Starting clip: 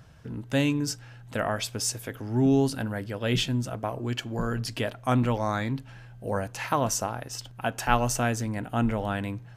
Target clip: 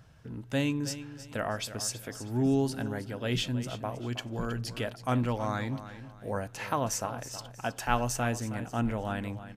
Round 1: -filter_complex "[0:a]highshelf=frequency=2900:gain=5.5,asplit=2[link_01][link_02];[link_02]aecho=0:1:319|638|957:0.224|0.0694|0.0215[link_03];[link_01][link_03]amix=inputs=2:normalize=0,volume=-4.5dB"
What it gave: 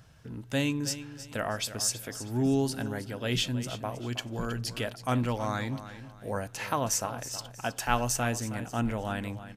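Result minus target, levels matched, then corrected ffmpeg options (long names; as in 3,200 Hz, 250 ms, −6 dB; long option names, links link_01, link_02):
8,000 Hz band +3.5 dB
-filter_complex "[0:a]asplit=2[link_01][link_02];[link_02]aecho=0:1:319|638|957:0.224|0.0694|0.0215[link_03];[link_01][link_03]amix=inputs=2:normalize=0,volume=-4.5dB"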